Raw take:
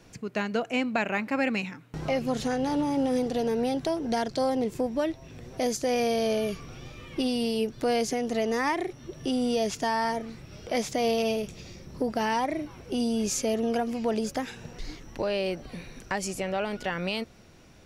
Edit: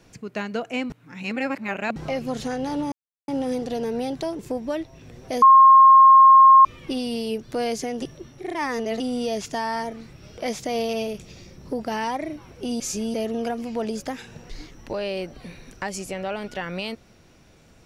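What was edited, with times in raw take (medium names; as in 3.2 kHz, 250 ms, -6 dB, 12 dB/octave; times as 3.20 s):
0.90–1.96 s: reverse
2.92 s: insert silence 0.36 s
4.03–4.68 s: delete
5.71–6.94 s: bleep 1.07 kHz -7.5 dBFS
8.31–9.29 s: reverse
13.09–13.43 s: reverse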